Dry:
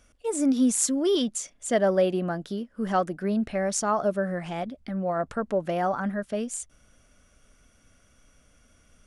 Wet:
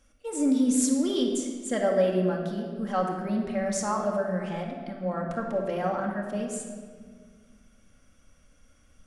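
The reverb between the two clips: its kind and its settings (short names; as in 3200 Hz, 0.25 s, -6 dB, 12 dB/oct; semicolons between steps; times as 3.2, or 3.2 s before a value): shoebox room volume 2400 m³, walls mixed, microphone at 2.2 m; gain -5.5 dB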